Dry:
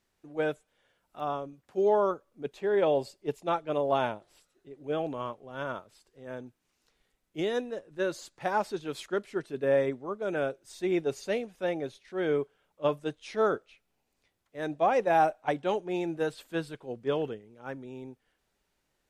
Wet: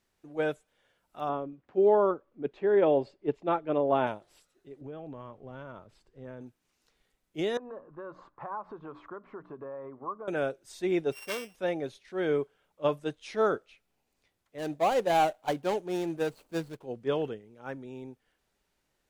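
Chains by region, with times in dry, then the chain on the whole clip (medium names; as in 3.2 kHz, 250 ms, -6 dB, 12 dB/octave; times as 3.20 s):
1.29–4.07 s: low-pass 2.6 kHz + peaking EQ 310 Hz +5 dB 0.88 oct
4.81–6.41 s: low-pass 2.5 kHz 6 dB/octave + bass shelf 190 Hz +10 dB + compression 16:1, threshold -37 dBFS
7.57–10.28 s: hum notches 60/120/180/240/300 Hz + compression 12:1, threshold -40 dBFS + resonant low-pass 1.1 kHz, resonance Q 7
11.12–11.55 s: sorted samples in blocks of 16 samples + bass shelf 250 Hz -8.5 dB + transformer saturation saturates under 1.7 kHz
14.58–16.84 s: median filter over 25 samples + treble shelf 5.2 kHz +9.5 dB
whole clip: none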